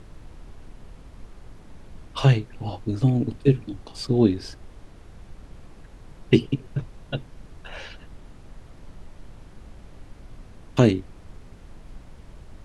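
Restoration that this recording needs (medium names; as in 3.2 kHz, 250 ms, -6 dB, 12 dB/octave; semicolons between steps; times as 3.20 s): noise print and reduce 24 dB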